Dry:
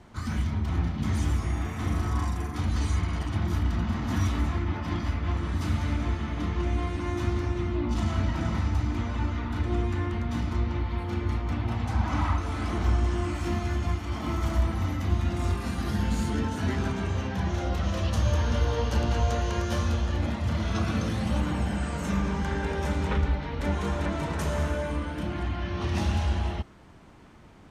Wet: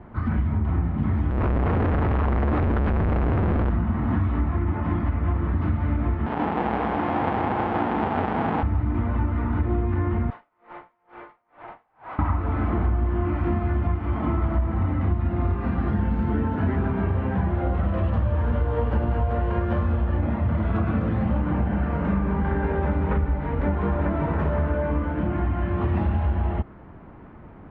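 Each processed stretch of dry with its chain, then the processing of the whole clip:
1.30–3.70 s: peaking EQ 1.7 kHz -2.5 dB 1 oct + hum notches 50/100/150/200 Hz + Schmitt trigger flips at -42 dBFS
6.26–8.63 s: square wave that keeps the level + cabinet simulation 240–7100 Hz, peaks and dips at 360 Hz -5 dB, 560 Hz -6 dB, 820 Hz +9 dB, 3.2 kHz +3 dB + delay 163 ms -5.5 dB
10.30–12.19 s: high-pass 510 Hz 24 dB/octave + valve stage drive 37 dB, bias 0.7 + logarithmic tremolo 2.2 Hz, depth 34 dB
whole clip: Bessel low-pass 1.4 kHz, order 4; compression, threshold -27 dBFS; trim +8 dB

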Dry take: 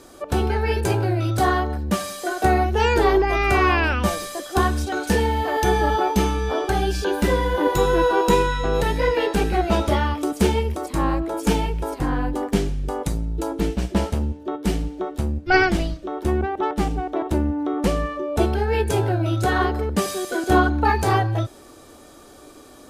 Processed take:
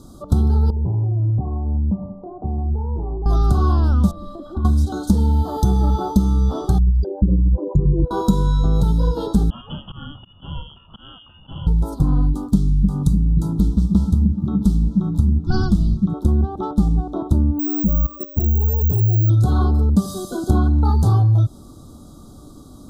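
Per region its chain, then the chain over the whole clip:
0.70–3.26 s: Chebyshev low-pass 980 Hz, order 5 + compression 5:1, threshold -28 dBFS
4.11–4.65 s: comb 3.4 ms, depth 99% + compression 8:1, threshold -26 dBFS + distance through air 490 m
6.78–8.11 s: resonances exaggerated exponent 3 + upward compressor, threshold -27 dBFS + comb of notches 240 Hz
9.50–11.67 s: high-pass 140 Hz + slow attack 107 ms + frequency inversion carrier 3.2 kHz
12.22–16.14 s: peaking EQ 570 Hz -11 dB 1.1 oct + repeats whose band climbs or falls 298 ms, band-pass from 160 Hz, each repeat 0.7 oct, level -3.5 dB
17.59–19.30 s: spectral contrast enhancement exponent 1.6 + level held to a coarse grid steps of 13 dB + careless resampling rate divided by 2×, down filtered, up zero stuff
whole clip: elliptic band-stop 1.3–3.6 kHz, stop band 80 dB; resonant low shelf 280 Hz +13.5 dB, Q 1.5; compression, threshold -10 dBFS; trim -1.5 dB

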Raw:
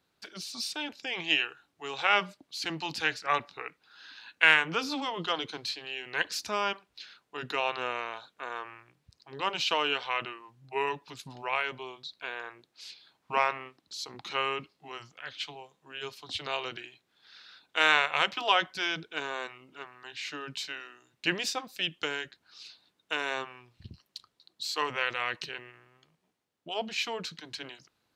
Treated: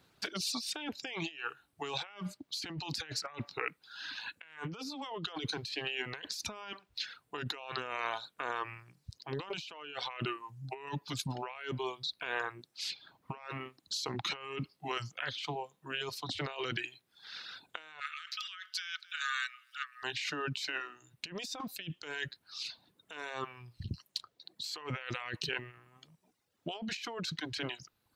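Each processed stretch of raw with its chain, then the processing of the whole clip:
18.00–20.03 s: upward compressor, threshold -44 dBFS + rippled Chebyshev high-pass 1.2 kHz, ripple 3 dB + delay 249 ms -23.5 dB
whole clip: reverb removal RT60 0.79 s; peaking EQ 110 Hz +5.5 dB 1.4 oct; compressor with a negative ratio -42 dBFS, ratio -1; trim +1 dB

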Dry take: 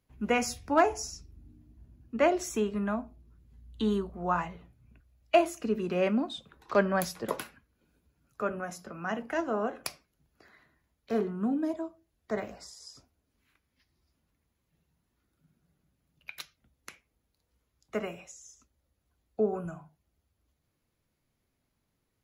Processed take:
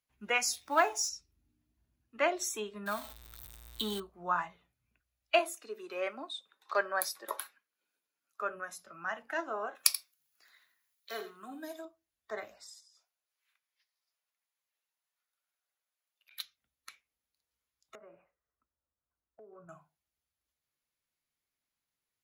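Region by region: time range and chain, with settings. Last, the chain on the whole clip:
0.53–1.09 s: companding laws mixed up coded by mu + high-pass 200 Hz 6 dB/octave
2.86–4.00 s: jump at every zero crossing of -36.5 dBFS + treble shelf 5 kHz +7.5 dB
5.39–8.42 s: high-pass 340 Hz + dynamic bell 3.1 kHz, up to -5 dB, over -52 dBFS, Q 1.5
9.75–11.85 s: tilt EQ +3 dB/octave + delay 84 ms -10.5 dB
12.80–16.31 s: inverse Chebyshev high-pass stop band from 150 Hz, stop band 60 dB + compression 4:1, threshold -58 dBFS
17.95–19.69 s: low-pass 1.5 kHz 24 dB/octave + band-stop 780 Hz, Q 17 + compression 8:1, threshold -39 dBFS
whole clip: spectral noise reduction 9 dB; tilt shelf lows -9 dB, about 680 Hz; trim -5 dB

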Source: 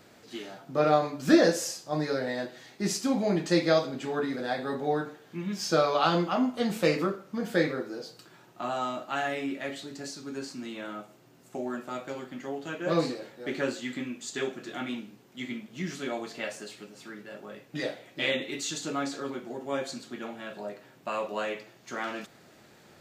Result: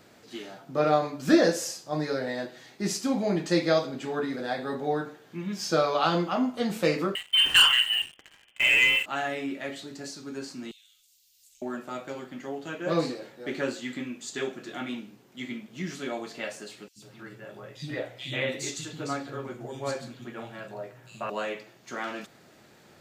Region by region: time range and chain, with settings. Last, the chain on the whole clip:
7.15–9.06 s: frequency inversion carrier 3.3 kHz + waveshaping leveller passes 3
10.71–11.62 s: inverse Chebyshev band-stop 160–1000 Hz, stop band 70 dB + treble shelf 12 kHz +4 dB + three bands compressed up and down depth 70%
16.88–21.30 s: peaking EQ 120 Hz +14 dB 0.4 oct + three bands offset in time highs, lows, mids 80/140 ms, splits 240/3300 Hz
whole clip: none

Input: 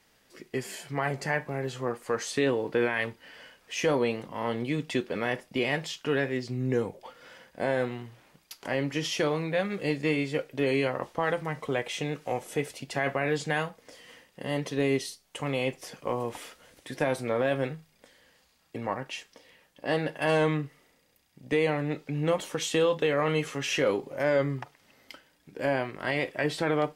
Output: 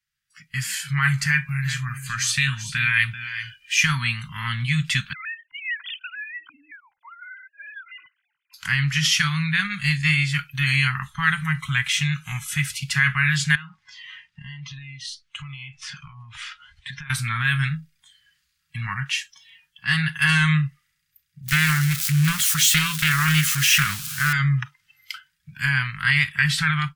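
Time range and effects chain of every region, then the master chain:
1.26–3.82 s: peaking EQ 590 Hz -10 dB 2.3 oct + small resonant body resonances 560/2400 Hz, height 12 dB, ringing for 55 ms + delay 387 ms -11.5 dB
5.13–8.54 s: formants replaced by sine waves + comb 2 ms, depth 33% + compression 8:1, threshold -35 dBFS
13.55–17.10 s: low-pass 4.8 kHz + compression 8:1, threshold -41 dBFS
21.48–24.33 s: zero-crossing glitches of -27.5 dBFS + loudspeaker Doppler distortion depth 0.27 ms
whole clip: spectral noise reduction 18 dB; elliptic band-stop 150–1400 Hz, stop band 70 dB; level rider gain up to 14 dB

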